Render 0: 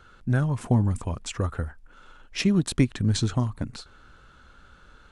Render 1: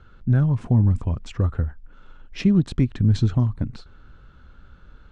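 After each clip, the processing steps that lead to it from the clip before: LPF 4700 Hz 12 dB/oct; low shelf 310 Hz +12 dB; maximiser +4 dB; gain -8 dB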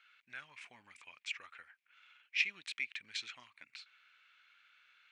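resonant high-pass 2300 Hz, resonance Q 5.9; gain -6.5 dB

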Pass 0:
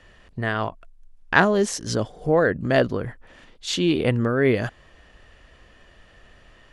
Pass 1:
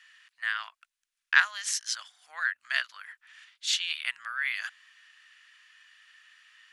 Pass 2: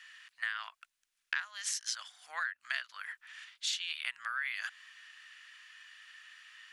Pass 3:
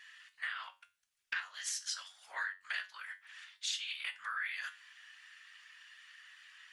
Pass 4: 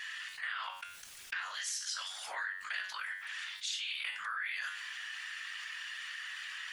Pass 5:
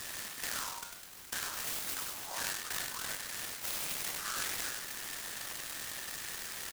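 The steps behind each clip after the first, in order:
inverse Chebyshev high-pass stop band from 440 Hz, stop band 60 dB
compressor 12:1, threshold -35 dBFS, peak gain reduction 20.5 dB; gain +3 dB
whisperiser; resonator 94 Hz, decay 0.27 s, harmonics all, mix 70%; gain +3.5 dB
fast leveller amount 70%; gain -2 dB
echo 99 ms -4.5 dB; noise-modulated delay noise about 5600 Hz, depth 0.12 ms

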